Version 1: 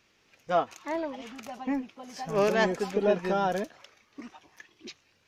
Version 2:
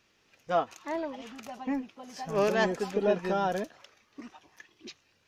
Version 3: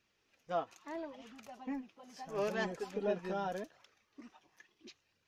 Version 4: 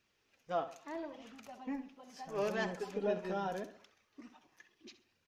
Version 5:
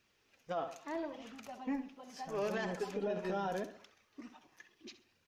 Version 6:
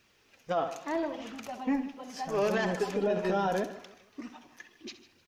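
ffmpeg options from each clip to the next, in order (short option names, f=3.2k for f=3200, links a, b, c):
-af "bandreject=f=2.2k:w=22,volume=-1.5dB"
-af "flanger=delay=0.4:depth=6:regen=-48:speed=0.77:shape=triangular,volume=-5.5dB"
-filter_complex "[0:a]asplit=2[a][b];[b]adelay=66,lowpass=f=4.5k:p=1,volume=-12dB,asplit=2[c][d];[d]adelay=66,lowpass=f=4.5k:p=1,volume=0.41,asplit=2[e][f];[f]adelay=66,lowpass=f=4.5k:p=1,volume=0.41,asplit=2[g][h];[h]adelay=66,lowpass=f=4.5k:p=1,volume=0.41[i];[a][c][e][g][i]amix=inputs=5:normalize=0"
-af "alimiter=level_in=7dB:limit=-24dB:level=0:latency=1:release=60,volume=-7dB,volume=3dB"
-af "aecho=1:1:153|306|459:0.133|0.0493|0.0183,volume=8dB"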